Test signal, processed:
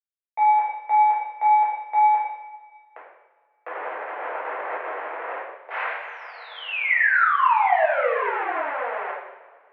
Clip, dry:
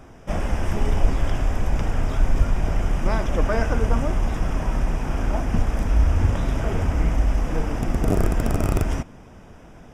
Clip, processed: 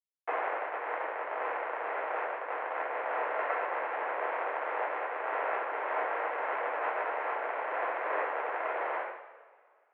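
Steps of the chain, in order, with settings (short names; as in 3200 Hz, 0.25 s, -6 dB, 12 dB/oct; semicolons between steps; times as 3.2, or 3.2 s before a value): compressor 10:1, threshold -30 dBFS; Schmitt trigger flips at -30 dBFS; two-slope reverb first 0.83 s, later 2.3 s, from -17 dB, DRR -7.5 dB; mistuned SSB +130 Hz 420–2100 Hz; gain +8.5 dB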